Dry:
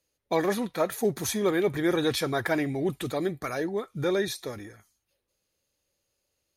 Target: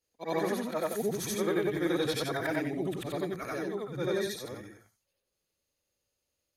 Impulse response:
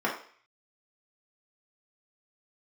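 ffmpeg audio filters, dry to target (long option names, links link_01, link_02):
-af "afftfilt=real='re':imag='-im':win_size=8192:overlap=0.75"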